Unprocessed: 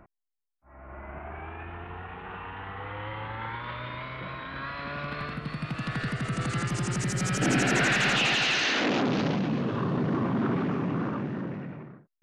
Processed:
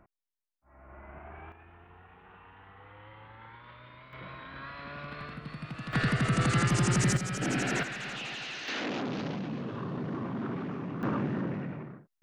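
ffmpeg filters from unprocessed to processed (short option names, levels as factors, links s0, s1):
-af "asetnsamples=n=441:p=0,asendcmd='1.52 volume volume -14.5dB;4.13 volume volume -7dB;5.93 volume volume 3.5dB;7.17 volume volume -6dB;7.83 volume volume -14dB;8.68 volume volume -8dB;11.03 volume volume 1dB',volume=0.447"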